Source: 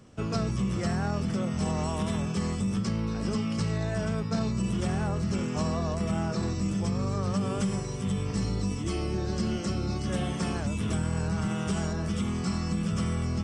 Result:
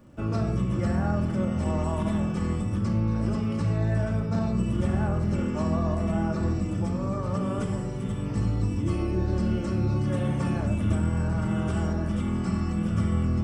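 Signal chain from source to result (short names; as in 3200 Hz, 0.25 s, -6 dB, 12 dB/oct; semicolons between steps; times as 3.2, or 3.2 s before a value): bell 5500 Hz -11.5 dB 2 oct; crackle 88/s -55 dBFS; shoebox room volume 2500 m³, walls furnished, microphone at 2.5 m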